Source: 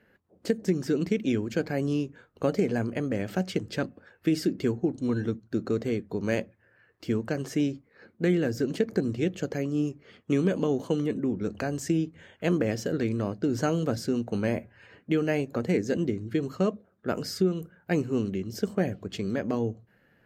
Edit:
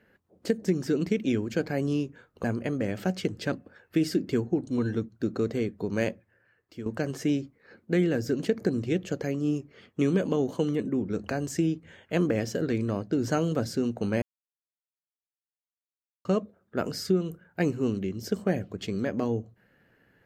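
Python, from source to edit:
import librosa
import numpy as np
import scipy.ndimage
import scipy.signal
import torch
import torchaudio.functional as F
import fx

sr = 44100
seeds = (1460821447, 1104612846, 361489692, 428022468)

y = fx.edit(x, sr, fx.cut(start_s=2.44, length_s=0.31),
    fx.fade_out_to(start_s=6.37, length_s=0.8, floor_db=-12.5),
    fx.silence(start_s=14.53, length_s=2.03), tone=tone)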